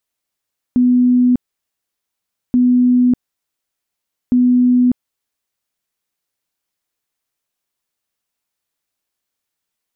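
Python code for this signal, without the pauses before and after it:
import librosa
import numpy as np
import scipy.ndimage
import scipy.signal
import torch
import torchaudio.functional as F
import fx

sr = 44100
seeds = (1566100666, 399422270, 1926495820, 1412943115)

y = fx.tone_burst(sr, hz=248.0, cycles=148, every_s=1.78, bursts=3, level_db=-8.5)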